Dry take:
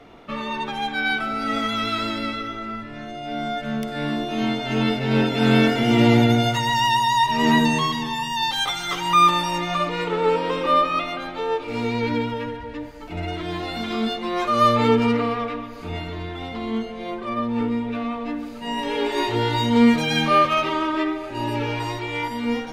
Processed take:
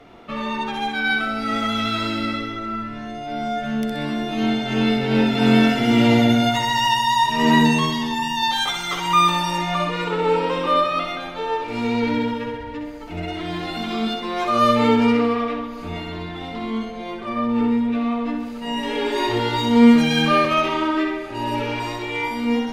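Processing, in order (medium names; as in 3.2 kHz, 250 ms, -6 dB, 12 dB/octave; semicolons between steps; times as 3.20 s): flutter echo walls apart 10.9 m, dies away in 0.62 s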